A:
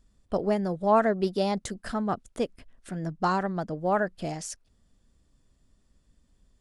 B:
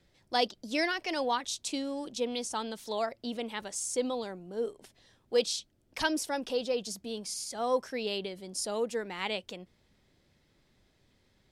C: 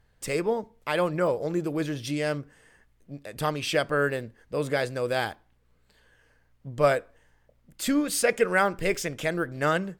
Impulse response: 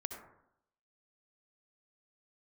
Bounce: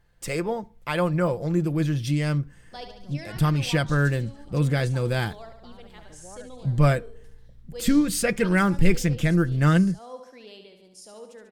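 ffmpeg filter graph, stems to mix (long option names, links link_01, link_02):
-filter_complex "[0:a]acompressor=threshold=-34dB:ratio=3,adelay=2400,volume=-10dB[link_01];[1:a]adelay=2400,volume=-12.5dB,asplit=2[link_02][link_03];[link_03]volume=-7.5dB[link_04];[2:a]asubboost=boost=7.5:cutoff=200,aecho=1:1:5.8:0.35,volume=0dB,asplit=2[link_05][link_06];[link_06]apad=whole_len=397337[link_07];[link_01][link_07]sidechaincompress=threshold=-34dB:ratio=8:attack=16:release=1260[link_08];[link_04]aecho=0:1:71|142|213|284|355|426|497|568|639:1|0.57|0.325|0.185|0.106|0.0602|0.0343|0.0195|0.0111[link_09];[link_08][link_02][link_05][link_09]amix=inputs=4:normalize=0"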